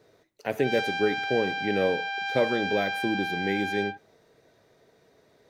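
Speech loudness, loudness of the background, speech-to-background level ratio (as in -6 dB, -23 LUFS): -29.0 LUFS, -30.5 LUFS, 1.5 dB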